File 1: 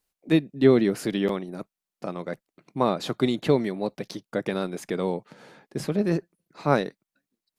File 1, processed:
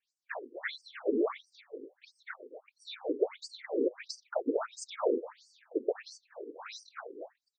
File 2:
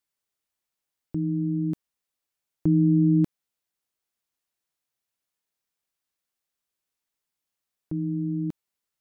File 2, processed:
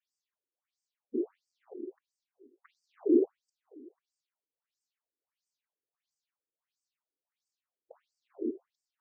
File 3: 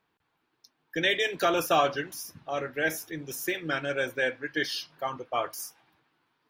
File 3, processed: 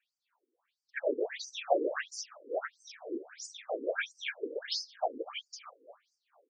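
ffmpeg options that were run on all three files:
-filter_complex "[0:a]afftfilt=real='hypot(re,im)*cos(2*PI*random(0))':imag='hypot(re,im)*sin(2*PI*random(1))':win_size=512:overlap=0.75,asplit=2[a][b];[b]adelay=246,lowpass=f=2k:p=1,volume=-13dB,asplit=2[c][d];[d]adelay=246,lowpass=f=2k:p=1,volume=0.44,asplit=2[e][f];[f]adelay=246,lowpass=f=2k:p=1,volume=0.44,asplit=2[g][h];[h]adelay=246,lowpass=f=2k:p=1,volume=0.44[i];[a][c][e][g][i]amix=inputs=5:normalize=0,afftfilt=real='re*between(b*sr/1024,350*pow(6500/350,0.5+0.5*sin(2*PI*1.5*pts/sr))/1.41,350*pow(6500/350,0.5+0.5*sin(2*PI*1.5*pts/sr))*1.41)':imag='im*between(b*sr/1024,350*pow(6500/350,0.5+0.5*sin(2*PI*1.5*pts/sr))/1.41,350*pow(6500/350,0.5+0.5*sin(2*PI*1.5*pts/sr))*1.41)':win_size=1024:overlap=0.75,volume=7.5dB"

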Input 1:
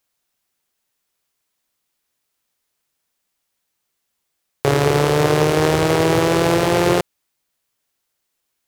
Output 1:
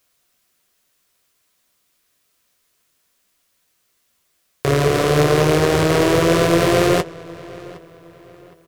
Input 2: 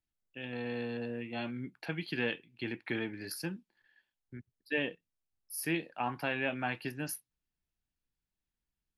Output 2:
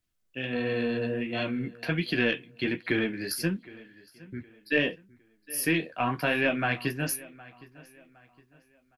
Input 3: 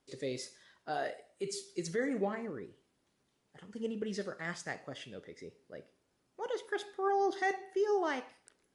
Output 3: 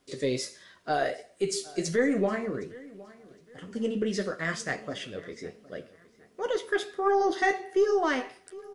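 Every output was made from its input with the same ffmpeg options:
-filter_complex "[0:a]asplit=2[a][b];[b]acompressor=threshold=-30dB:ratio=6,volume=-1dB[c];[a][c]amix=inputs=2:normalize=0,alimiter=limit=-5.5dB:level=0:latency=1:release=314,flanger=delay=9.9:depth=5.9:regen=-33:speed=1.4:shape=triangular,aeval=exprs='0.501*(cos(1*acos(clip(val(0)/0.501,-1,1)))-cos(1*PI/2))+0.01*(cos(8*acos(clip(val(0)/0.501,-1,1)))-cos(8*PI/2))':c=same,asuperstop=centerf=850:order=4:qfactor=6.7,asplit=2[d][e];[e]adelay=763,lowpass=f=4.3k:p=1,volume=-20.5dB,asplit=2[f][g];[g]adelay=763,lowpass=f=4.3k:p=1,volume=0.37,asplit=2[h][i];[i]adelay=763,lowpass=f=4.3k:p=1,volume=0.37[j];[f][h][j]amix=inputs=3:normalize=0[k];[d][k]amix=inputs=2:normalize=0,volume=7dB"

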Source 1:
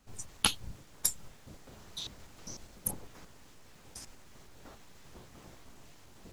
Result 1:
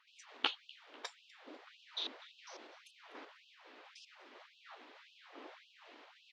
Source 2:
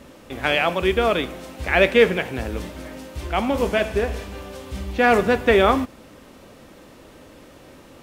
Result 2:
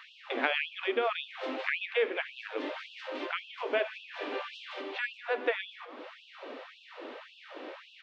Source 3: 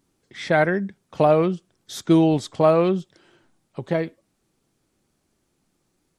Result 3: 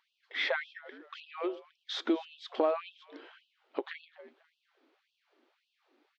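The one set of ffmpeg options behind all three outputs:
-filter_complex "[0:a]acompressor=threshold=-30dB:ratio=6,lowpass=f=3.7k:w=0.5412,lowpass=f=3.7k:w=1.3066,asplit=2[a][b];[b]asplit=3[c][d][e];[c]adelay=247,afreqshift=-89,volume=-20.5dB[f];[d]adelay=494,afreqshift=-178,volume=-28.9dB[g];[e]adelay=741,afreqshift=-267,volume=-37.3dB[h];[f][g][h]amix=inputs=3:normalize=0[i];[a][i]amix=inputs=2:normalize=0,afftfilt=real='re*gte(b*sr/1024,220*pow(2600/220,0.5+0.5*sin(2*PI*1.8*pts/sr)))':imag='im*gte(b*sr/1024,220*pow(2600/220,0.5+0.5*sin(2*PI*1.8*pts/sr)))':win_size=1024:overlap=0.75,volume=4.5dB"

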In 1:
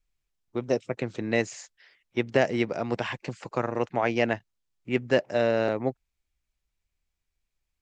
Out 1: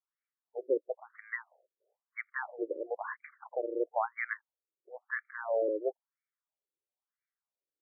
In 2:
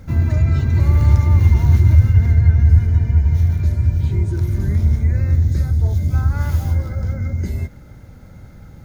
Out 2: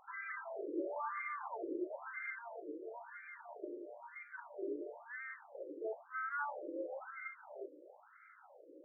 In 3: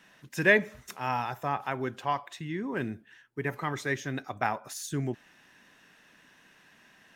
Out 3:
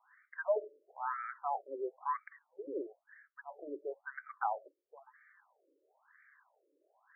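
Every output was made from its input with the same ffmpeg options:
-af "highpass=f=190:w=0.5412,highpass=f=190:w=1.3066,afftfilt=real='re*between(b*sr/1024,400*pow(1700/400,0.5+0.5*sin(2*PI*1*pts/sr))/1.41,400*pow(1700/400,0.5+0.5*sin(2*PI*1*pts/sr))*1.41)':imag='im*between(b*sr/1024,400*pow(1700/400,0.5+0.5*sin(2*PI*1*pts/sr))/1.41,400*pow(1700/400,0.5+0.5*sin(2*PI*1*pts/sr))*1.41)':win_size=1024:overlap=0.75,volume=-2.5dB"

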